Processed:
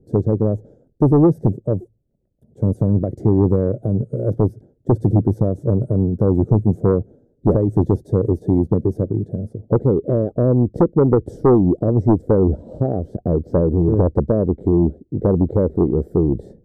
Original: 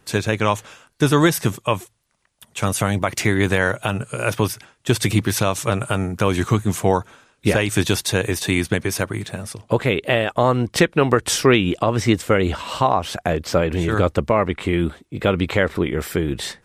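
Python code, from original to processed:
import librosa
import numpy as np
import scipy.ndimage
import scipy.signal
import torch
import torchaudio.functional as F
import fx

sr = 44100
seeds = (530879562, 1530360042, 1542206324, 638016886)

y = scipy.signal.sosfilt(scipy.signal.cheby2(4, 40, 1000.0, 'lowpass', fs=sr, output='sos'), x)
y = fx.fold_sine(y, sr, drive_db=5, ceiling_db=-5.0)
y = y * librosa.db_to_amplitude(-2.5)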